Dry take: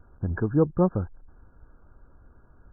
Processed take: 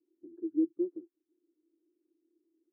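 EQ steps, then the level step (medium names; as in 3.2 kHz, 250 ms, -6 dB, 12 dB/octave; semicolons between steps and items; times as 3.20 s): Butterworth band-pass 330 Hz, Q 6.7; tilt EQ +3 dB/octave; +3.0 dB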